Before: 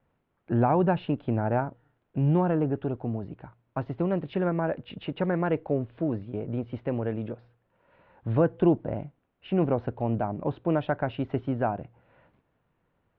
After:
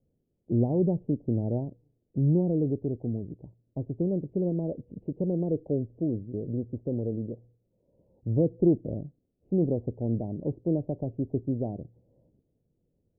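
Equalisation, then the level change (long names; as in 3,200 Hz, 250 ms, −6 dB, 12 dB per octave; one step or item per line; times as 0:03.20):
inverse Chebyshev low-pass filter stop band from 1,300 Hz, stop band 50 dB
0.0 dB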